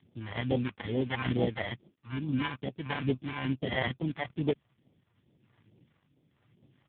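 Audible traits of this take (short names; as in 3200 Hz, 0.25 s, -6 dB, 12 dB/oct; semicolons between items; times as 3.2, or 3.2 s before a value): aliases and images of a low sample rate 1300 Hz, jitter 0%; phasing stages 2, 2.3 Hz, lowest notch 290–1500 Hz; random-step tremolo; AMR-NB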